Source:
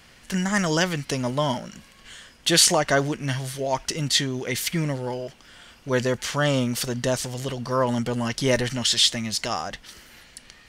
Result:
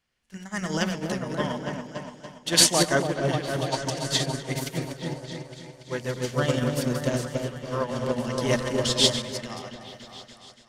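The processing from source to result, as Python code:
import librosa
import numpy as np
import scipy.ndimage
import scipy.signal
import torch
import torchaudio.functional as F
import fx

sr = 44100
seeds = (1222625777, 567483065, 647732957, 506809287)

y = fx.reverse_delay_fb(x, sr, ms=123, feedback_pct=43, wet_db=-6)
y = fx.echo_opening(y, sr, ms=286, hz=750, octaves=1, feedback_pct=70, wet_db=0)
y = fx.upward_expand(y, sr, threshold_db=-32.0, expansion=2.5)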